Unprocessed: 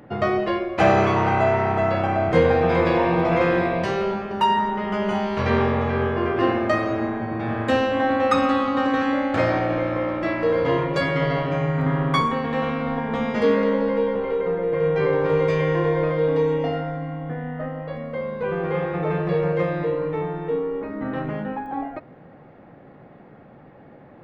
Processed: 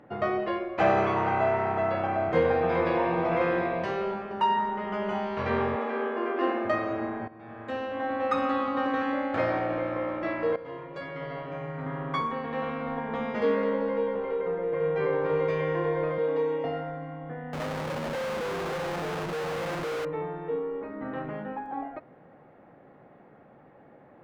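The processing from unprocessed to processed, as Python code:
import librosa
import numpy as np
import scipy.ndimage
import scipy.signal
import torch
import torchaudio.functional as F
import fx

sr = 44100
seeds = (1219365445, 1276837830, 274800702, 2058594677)

y = fx.brickwall_highpass(x, sr, low_hz=200.0, at=(5.76, 6.65))
y = fx.highpass(y, sr, hz=220.0, slope=12, at=(16.18, 16.65))
y = fx.schmitt(y, sr, flips_db=-39.5, at=(17.53, 20.05))
y = fx.edit(y, sr, fx.fade_in_from(start_s=7.28, length_s=1.34, floor_db=-16.5),
    fx.fade_in_from(start_s=10.56, length_s=2.42, floor_db=-14.5), tone=tone)
y = fx.lowpass(y, sr, hz=2000.0, slope=6)
y = fx.low_shelf(y, sr, hz=270.0, db=-9.0)
y = y * librosa.db_to_amplitude(-3.5)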